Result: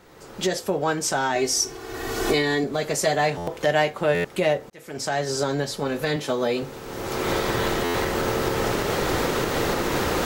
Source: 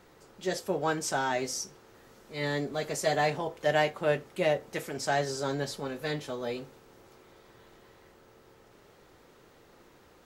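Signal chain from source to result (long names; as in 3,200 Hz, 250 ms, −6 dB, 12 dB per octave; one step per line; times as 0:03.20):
camcorder AGC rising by 29 dB per second
0:01.35–0:02.64: comb filter 2.7 ms, depth 89%
0:04.70–0:05.32: fade in
0:06.16–0:06.63: high-pass filter 130 Hz
buffer that repeats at 0:03.37/0:04.14/0:07.84, samples 512, times 8
level +5 dB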